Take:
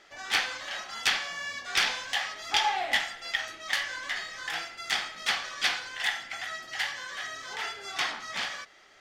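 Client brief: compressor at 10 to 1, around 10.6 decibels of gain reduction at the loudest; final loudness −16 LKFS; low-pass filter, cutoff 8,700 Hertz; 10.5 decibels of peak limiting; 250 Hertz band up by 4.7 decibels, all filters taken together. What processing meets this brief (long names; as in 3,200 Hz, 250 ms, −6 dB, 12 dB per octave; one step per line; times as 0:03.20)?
low-pass filter 8,700 Hz
parametric band 250 Hz +6 dB
downward compressor 10 to 1, threshold −32 dBFS
level +21.5 dB
brickwall limiter −5.5 dBFS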